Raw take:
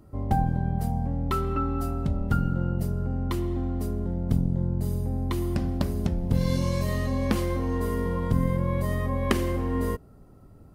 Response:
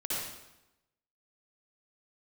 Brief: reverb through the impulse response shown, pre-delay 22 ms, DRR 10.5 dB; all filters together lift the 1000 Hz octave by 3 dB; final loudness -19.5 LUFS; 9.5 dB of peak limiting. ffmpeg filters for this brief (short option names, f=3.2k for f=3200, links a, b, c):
-filter_complex "[0:a]equalizer=f=1k:t=o:g=4,alimiter=limit=-17dB:level=0:latency=1,asplit=2[a][b];[1:a]atrim=start_sample=2205,adelay=22[c];[b][c]afir=irnorm=-1:irlink=0,volume=-16dB[d];[a][d]amix=inputs=2:normalize=0,volume=7.5dB"